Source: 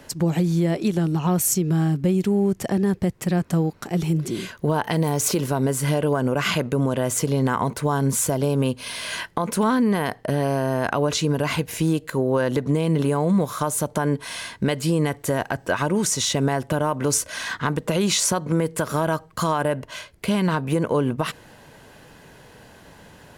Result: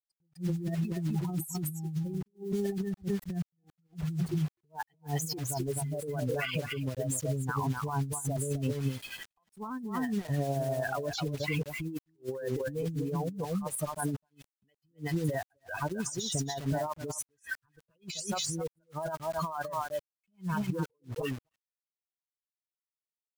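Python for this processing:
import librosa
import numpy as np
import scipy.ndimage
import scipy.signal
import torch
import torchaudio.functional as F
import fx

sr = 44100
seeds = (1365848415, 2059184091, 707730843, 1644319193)

y = fx.bin_expand(x, sr, power=3.0)
y = fx.high_shelf(y, sr, hz=7500.0, db=5.0)
y = y + 10.0 ** (-8.0 / 20.0) * np.pad(y, (int(257 * sr / 1000.0), 0))[:len(y)]
y = fx.quant_dither(y, sr, seeds[0], bits=8, dither='none')
y = fx.harmonic_tremolo(y, sr, hz=9.9, depth_pct=50, crossover_hz=1200.0)
y = fx.over_compress(y, sr, threshold_db=-36.0, ratio=-1.0)
y = fx.low_shelf(y, sr, hz=320.0, db=6.0)
y = fx.attack_slew(y, sr, db_per_s=360.0)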